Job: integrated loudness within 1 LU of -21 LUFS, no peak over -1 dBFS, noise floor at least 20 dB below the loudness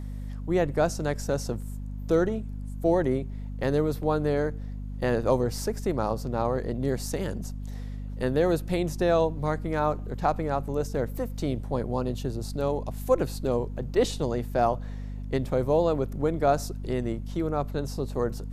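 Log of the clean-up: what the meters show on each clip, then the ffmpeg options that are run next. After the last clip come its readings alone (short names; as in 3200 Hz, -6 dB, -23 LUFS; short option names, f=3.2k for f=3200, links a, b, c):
hum 50 Hz; harmonics up to 250 Hz; hum level -32 dBFS; loudness -28.0 LUFS; peak -9.5 dBFS; loudness target -21.0 LUFS
-> -af "bandreject=f=50:t=h:w=6,bandreject=f=100:t=h:w=6,bandreject=f=150:t=h:w=6,bandreject=f=200:t=h:w=6,bandreject=f=250:t=h:w=6"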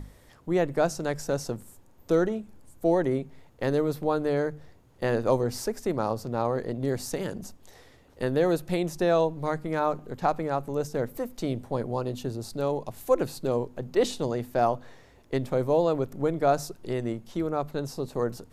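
hum none; loudness -28.5 LUFS; peak -10.0 dBFS; loudness target -21.0 LUFS
-> -af "volume=7.5dB"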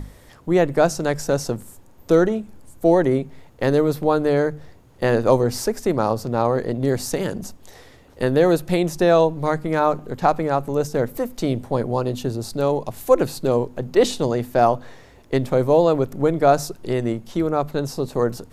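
loudness -21.0 LUFS; peak -2.5 dBFS; noise floor -48 dBFS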